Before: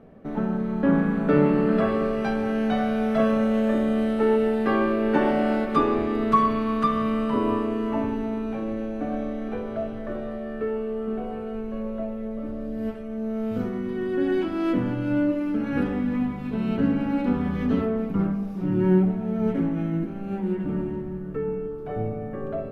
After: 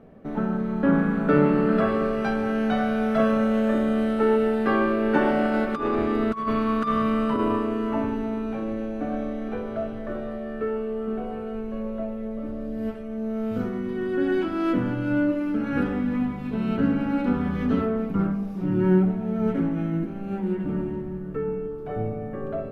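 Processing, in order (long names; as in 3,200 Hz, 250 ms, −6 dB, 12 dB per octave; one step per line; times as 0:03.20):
0:05.45–0:07.56: compressor whose output falls as the input rises −23 dBFS, ratio −0.5
dynamic equaliser 1,400 Hz, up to +6 dB, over −49 dBFS, Q 4.9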